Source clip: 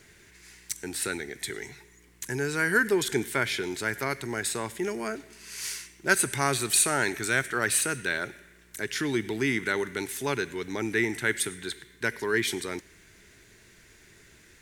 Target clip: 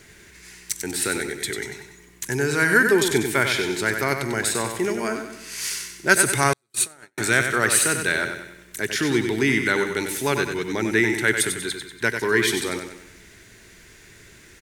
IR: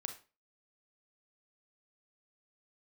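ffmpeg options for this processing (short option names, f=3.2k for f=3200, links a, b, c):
-filter_complex "[0:a]aecho=1:1:95|190|285|380|475:0.447|0.197|0.0865|0.0381|0.0167,asettb=1/sr,asplit=3[a][b][c];[a]atrim=end=6.534[d];[b]atrim=start=6.53:end=7.18,asetpts=PTS-STARTPTS,afade=t=in:d=0.004:c=qsin,afade=t=out:st=0.646:d=0.004:c=qsin,agate=range=-52dB:threshold=-19dB:ratio=16:detection=peak[e];[c]atrim=start=7.176[f];[d][e]acrossfade=d=0.004:c1=hsin:c2=qsin[g];[g][f]acrossfade=d=0.004:c1=qsin:c2=hsin,volume=6dB"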